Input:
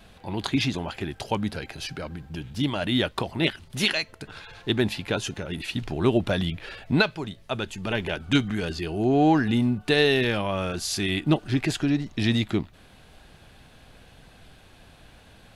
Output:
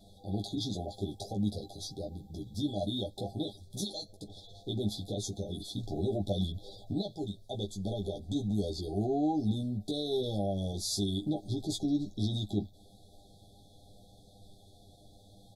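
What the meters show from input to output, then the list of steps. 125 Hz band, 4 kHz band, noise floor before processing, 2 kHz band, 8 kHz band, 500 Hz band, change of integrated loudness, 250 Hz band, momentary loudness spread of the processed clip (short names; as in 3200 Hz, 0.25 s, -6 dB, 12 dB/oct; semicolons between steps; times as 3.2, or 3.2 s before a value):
-7.0 dB, -10.0 dB, -53 dBFS, under -40 dB, -5.0 dB, -9.0 dB, -9.0 dB, -8.5 dB, 9 LU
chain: limiter -18.5 dBFS, peak gain reduction 11.5 dB; brick-wall FIR band-stop 830–3300 Hz; early reflections 10 ms -3.5 dB, 20 ms -5 dB; gain -7 dB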